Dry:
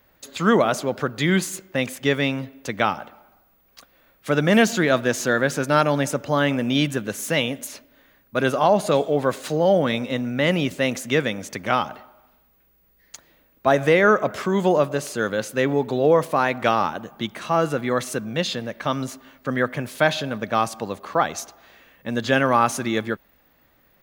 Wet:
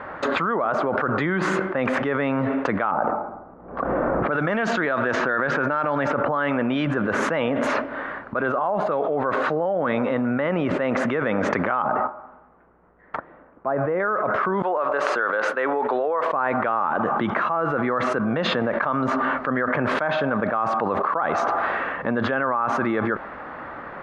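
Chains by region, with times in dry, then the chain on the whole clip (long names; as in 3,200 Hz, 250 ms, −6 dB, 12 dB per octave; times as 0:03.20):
0:02.91–0:06.85: low-pass that shuts in the quiet parts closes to 450 Hz, open at −13.5 dBFS + high-shelf EQ 2,300 Hz +10.5 dB + background raised ahead of every attack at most 72 dB per second
0:11.82–0:14.00: noise gate −49 dBFS, range −10 dB + head-to-tape spacing loss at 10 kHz 45 dB
0:14.62–0:16.33: high-pass filter 320 Hz + low-shelf EQ 490 Hz −10 dB + downward expander −37 dBFS
whole clip: Chebyshev low-pass filter 1,300 Hz, order 3; spectral tilt +4.5 dB per octave; envelope flattener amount 100%; level −8 dB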